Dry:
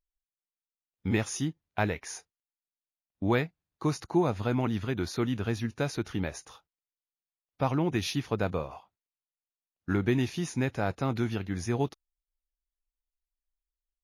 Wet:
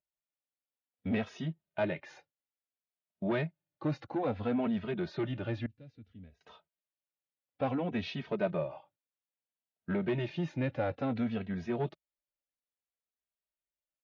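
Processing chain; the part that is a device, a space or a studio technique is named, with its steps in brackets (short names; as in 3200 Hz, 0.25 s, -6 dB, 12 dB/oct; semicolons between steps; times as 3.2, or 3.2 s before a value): barber-pole flanger into a guitar amplifier (endless flanger 2.8 ms -0.59 Hz; soft clip -26.5 dBFS, distortion -14 dB; speaker cabinet 110–3600 Hz, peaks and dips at 160 Hz +3 dB, 240 Hz +3 dB, 590 Hz +9 dB, 1100 Hz -4 dB); 5.66–6.41 passive tone stack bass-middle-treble 10-0-1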